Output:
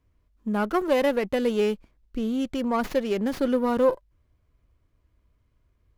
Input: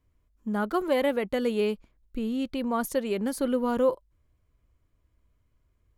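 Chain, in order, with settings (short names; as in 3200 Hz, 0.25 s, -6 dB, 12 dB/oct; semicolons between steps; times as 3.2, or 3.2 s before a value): running maximum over 5 samples; gain +3 dB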